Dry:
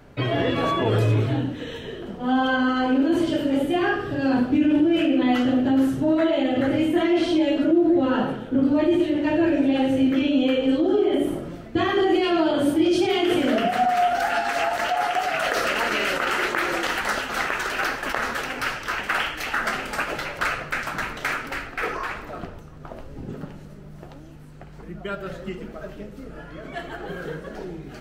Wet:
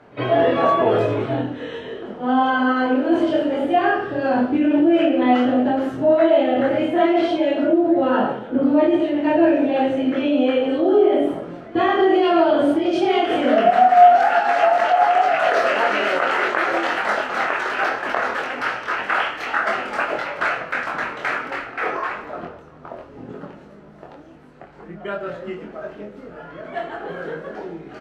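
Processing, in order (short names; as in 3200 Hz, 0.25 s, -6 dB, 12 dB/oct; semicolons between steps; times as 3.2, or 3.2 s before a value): dynamic EQ 670 Hz, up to +5 dB, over -36 dBFS, Q 3.6; band-pass 810 Hz, Q 0.51; doubler 24 ms -3 dB; pre-echo 53 ms -23 dB; gain +3.5 dB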